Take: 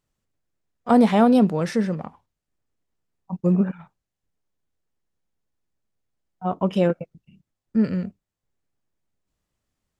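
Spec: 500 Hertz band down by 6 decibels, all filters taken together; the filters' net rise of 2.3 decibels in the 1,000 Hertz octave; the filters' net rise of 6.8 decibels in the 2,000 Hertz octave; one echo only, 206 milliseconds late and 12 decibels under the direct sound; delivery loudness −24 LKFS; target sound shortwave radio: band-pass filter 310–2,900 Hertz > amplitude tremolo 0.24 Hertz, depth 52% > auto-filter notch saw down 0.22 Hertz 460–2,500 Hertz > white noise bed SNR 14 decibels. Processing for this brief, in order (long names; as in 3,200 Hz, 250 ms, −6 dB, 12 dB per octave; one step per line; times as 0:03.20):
band-pass filter 310–2,900 Hz
parametric band 500 Hz −9 dB
parametric band 1,000 Hz +6 dB
parametric band 2,000 Hz +8 dB
single-tap delay 206 ms −12 dB
amplitude tremolo 0.24 Hz, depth 52%
auto-filter notch saw down 0.22 Hz 460–2,500 Hz
white noise bed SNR 14 dB
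level +8 dB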